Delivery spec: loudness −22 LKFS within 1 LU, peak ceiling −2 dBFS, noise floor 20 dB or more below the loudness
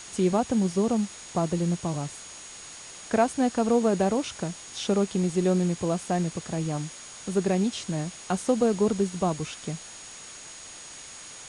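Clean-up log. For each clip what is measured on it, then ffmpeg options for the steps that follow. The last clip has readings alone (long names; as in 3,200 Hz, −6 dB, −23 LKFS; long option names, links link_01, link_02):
interfering tone 6,700 Hz; level of the tone −45 dBFS; background noise floor −44 dBFS; target noise floor −47 dBFS; integrated loudness −27.0 LKFS; sample peak −11.5 dBFS; target loudness −22.0 LKFS
→ -af "bandreject=frequency=6700:width=30"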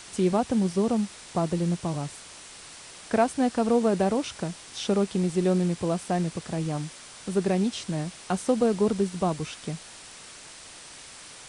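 interfering tone none found; background noise floor −46 dBFS; target noise floor −47 dBFS
→ -af "afftdn=noise_reduction=6:noise_floor=-46"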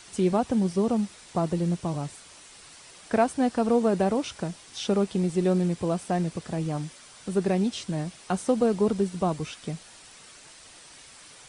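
background noise floor −50 dBFS; integrated loudness −27.0 LKFS; sample peak −11.5 dBFS; target loudness −22.0 LKFS
→ -af "volume=5dB"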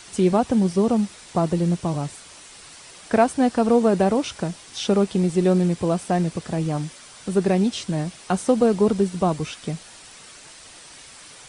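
integrated loudness −22.0 LKFS; sample peak −6.5 dBFS; background noise floor −45 dBFS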